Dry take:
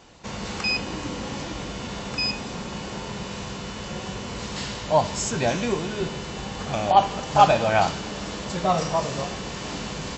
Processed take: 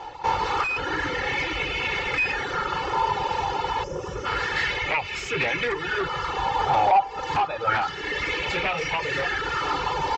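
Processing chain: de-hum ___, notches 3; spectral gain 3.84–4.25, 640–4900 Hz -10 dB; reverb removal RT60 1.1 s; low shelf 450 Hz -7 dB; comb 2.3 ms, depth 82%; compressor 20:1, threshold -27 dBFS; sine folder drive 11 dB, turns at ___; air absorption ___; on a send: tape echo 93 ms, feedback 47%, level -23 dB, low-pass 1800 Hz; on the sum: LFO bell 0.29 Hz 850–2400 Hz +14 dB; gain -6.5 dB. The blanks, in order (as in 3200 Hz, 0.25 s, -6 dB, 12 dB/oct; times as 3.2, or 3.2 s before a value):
60.9 Hz, -16.5 dBFS, 190 m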